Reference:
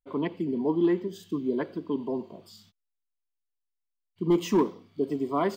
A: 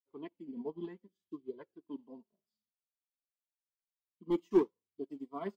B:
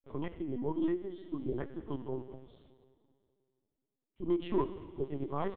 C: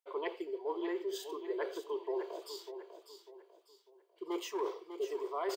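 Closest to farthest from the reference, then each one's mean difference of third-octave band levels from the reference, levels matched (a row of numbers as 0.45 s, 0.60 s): B, A, C; 5.5 dB, 8.5 dB, 11.0 dB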